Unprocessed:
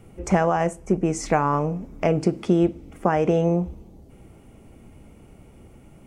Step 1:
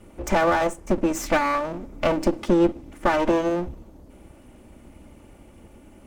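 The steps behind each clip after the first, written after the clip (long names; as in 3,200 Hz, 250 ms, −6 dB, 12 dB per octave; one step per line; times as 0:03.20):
lower of the sound and its delayed copy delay 3.4 ms
level +2 dB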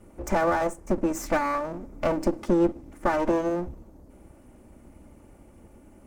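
parametric band 3,200 Hz −8 dB 1.1 octaves
level −3 dB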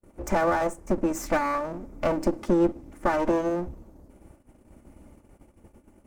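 noise gate −50 dBFS, range −34 dB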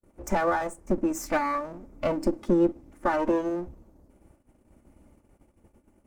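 noise reduction from a noise print of the clip's start 6 dB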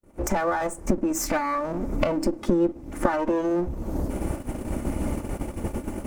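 camcorder AGC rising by 65 dB per second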